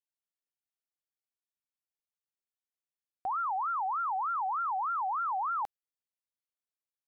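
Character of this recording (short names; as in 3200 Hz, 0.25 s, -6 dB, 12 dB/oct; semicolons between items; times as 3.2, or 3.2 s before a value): noise floor -96 dBFS; spectral tilt +7.5 dB/oct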